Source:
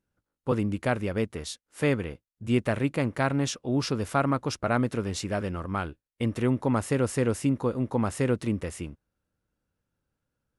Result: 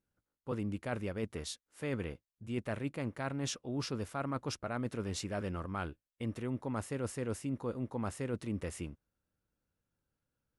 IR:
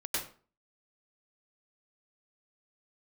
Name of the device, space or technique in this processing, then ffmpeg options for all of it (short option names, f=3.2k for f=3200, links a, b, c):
compression on the reversed sound: -af "areverse,acompressor=threshold=-28dB:ratio=6,areverse,volume=-5dB"